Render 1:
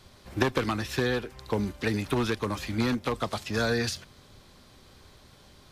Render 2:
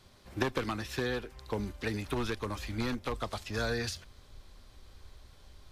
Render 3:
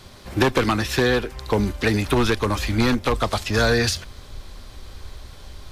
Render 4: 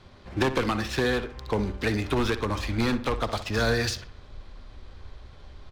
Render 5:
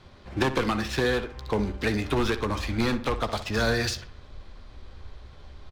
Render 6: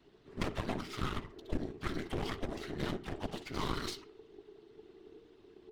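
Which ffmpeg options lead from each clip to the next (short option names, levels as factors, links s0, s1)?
-af "asubboost=boost=7:cutoff=61,volume=0.531"
-af "aeval=exprs='0.133*sin(PI/2*1.58*val(0)/0.133)':c=same,volume=2.24"
-filter_complex "[0:a]adynamicsmooth=sensitivity=7:basefreq=3400,asplit=2[s0][s1];[s1]adelay=61,lowpass=f=3300:p=1,volume=0.251,asplit=2[s2][s3];[s3]adelay=61,lowpass=f=3300:p=1,volume=0.46,asplit=2[s4][s5];[s5]adelay=61,lowpass=f=3300:p=1,volume=0.46,asplit=2[s6][s7];[s7]adelay=61,lowpass=f=3300:p=1,volume=0.46,asplit=2[s8][s9];[s9]adelay=61,lowpass=f=3300:p=1,volume=0.46[s10];[s0][s2][s4][s6][s8][s10]amix=inputs=6:normalize=0,volume=0.501"
-filter_complex "[0:a]asplit=2[s0][s1];[s1]adelay=14,volume=0.224[s2];[s0][s2]amix=inputs=2:normalize=0"
-af "afftfilt=real='hypot(re,im)*cos(2*PI*random(0))':imag='hypot(re,im)*sin(2*PI*random(1))':win_size=512:overlap=0.75,afreqshift=-460,aeval=exprs='0.15*(cos(1*acos(clip(val(0)/0.15,-1,1)))-cos(1*PI/2))+0.0422*(cos(4*acos(clip(val(0)/0.15,-1,1)))-cos(4*PI/2))':c=same,volume=0.473"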